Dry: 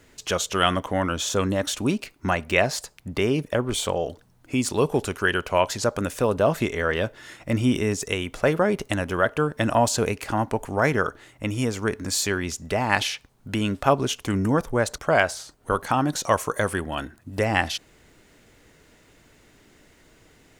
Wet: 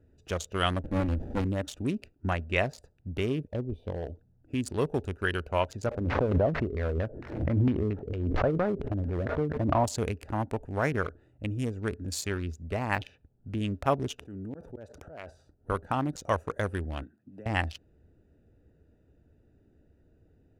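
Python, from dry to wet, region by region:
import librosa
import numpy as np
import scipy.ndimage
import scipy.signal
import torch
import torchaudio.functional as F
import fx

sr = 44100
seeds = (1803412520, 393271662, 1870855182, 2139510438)

y = fx.chain(x, sr, fx.high_shelf(hz=5400.0, db=-2.5),
    fx.comb(ms=3.6, depth=0.83),
    fx.running_max(window=33), at=(0.82, 1.45))
y = fx.chain(y, sr, fx.env_phaser(low_hz=260.0, high_hz=1400.0, full_db=-30.5),
    fx.high_shelf(hz=2000.0, db=-10.5), at=(3.47, 4.03))
y = fx.chain(y, sr, fx.cvsd(bps=32000),
    fx.filter_lfo_lowpass(shape='saw_down', hz=4.4, low_hz=280.0, high_hz=2500.0, q=1.2),
    fx.pre_swell(db_per_s=39.0), at=(5.86, 9.84))
y = fx.chain(y, sr, fx.block_float(bits=5),
    fx.high_shelf(hz=3800.0, db=-10.5), at=(12.93, 13.58))
y = fx.chain(y, sr, fx.highpass(hz=240.0, slope=6),
    fx.auto_swell(attack_ms=648.0),
    fx.env_flatten(amount_pct=70), at=(14.18, 15.3))
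y = fx.chain(y, sr, fx.highpass(hz=170.0, slope=24),
    fx.peak_eq(hz=510.0, db=-8.0, octaves=2.6),
    fx.band_squash(depth_pct=70), at=(17.03, 17.46))
y = fx.wiener(y, sr, points=41)
y = fx.peak_eq(y, sr, hz=77.0, db=10.5, octaves=0.68)
y = y * 10.0 ** (-6.5 / 20.0)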